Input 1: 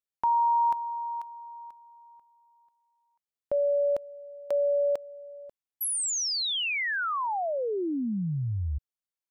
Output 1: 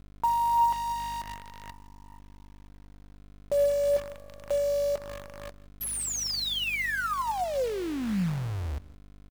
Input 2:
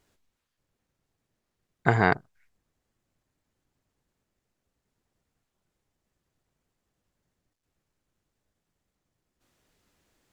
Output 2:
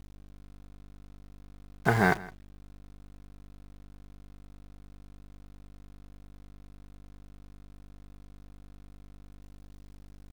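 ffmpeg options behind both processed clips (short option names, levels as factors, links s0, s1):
-filter_complex "[0:a]flanger=delay=3.7:depth=2:regen=60:speed=0.66:shape=triangular,asplit=2[s0][s1];[s1]asoftclip=type=tanh:threshold=0.0841,volume=0.562[s2];[s0][s2]amix=inputs=2:normalize=0,aeval=exprs='val(0)+0.00562*(sin(2*PI*50*n/s)+sin(2*PI*2*50*n/s)/2+sin(2*PI*3*50*n/s)/3+sin(2*PI*4*50*n/s)/4+sin(2*PI*5*50*n/s)/5)':c=same,acrusher=bits=7:dc=4:mix=0:aa=0.000001,highshelf=f=5900:g=-4,asplit=2[s3][s4];[s4]aecho=0:1:164:0.0944[s5];[s3][s5]amix=inputs=2:normalize=0"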